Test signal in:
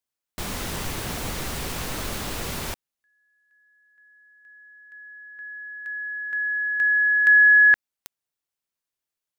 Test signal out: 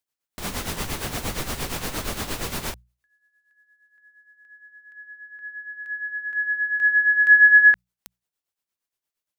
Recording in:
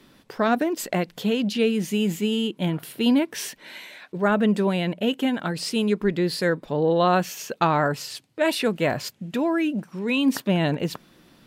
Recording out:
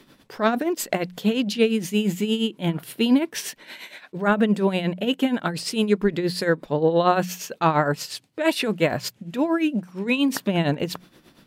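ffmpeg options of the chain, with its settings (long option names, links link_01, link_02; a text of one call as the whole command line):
ffmpeg -i in.wav -af "tremolo=f=8.6:d=0.69,bandreject=frequency=60:width_type=h:width=6,bandreject=frequency=120:width_type=h:width=6,bandreject=frequency=180:width_type=h:width=6,volume=4dB" out.wav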